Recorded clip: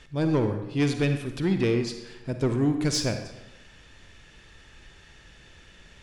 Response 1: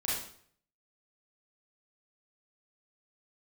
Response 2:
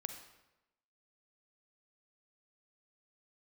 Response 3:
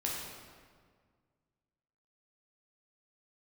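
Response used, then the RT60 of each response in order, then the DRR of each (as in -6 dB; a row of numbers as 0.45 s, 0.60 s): 2; 0.55 s, 0.95 s, 1.8 s; -7.5 dB, 6.5 dB, -4.0 dB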